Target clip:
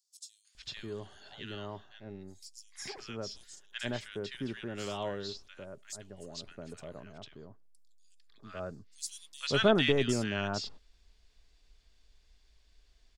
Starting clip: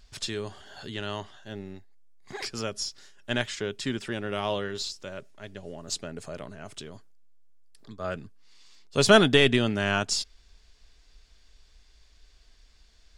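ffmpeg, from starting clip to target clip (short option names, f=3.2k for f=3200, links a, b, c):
-filter_complex "[0:a]acrossover=split=1400|5700[a][b][c];[b]adelay=450[d];[a]adelay=550[e];[e][d][c]amix=inputs=3:normalize=0,volume=-6.5dB"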